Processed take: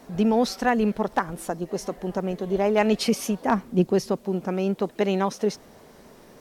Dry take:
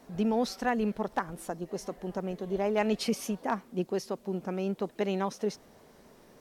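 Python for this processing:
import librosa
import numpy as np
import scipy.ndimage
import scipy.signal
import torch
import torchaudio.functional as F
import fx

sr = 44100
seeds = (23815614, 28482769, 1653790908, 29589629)

y = fx.low_shelf(x, sr, hz=190.0, db=11.5, at=(3.47, 4.17))
y = y * 10.0 ** (7.0 / 20.0)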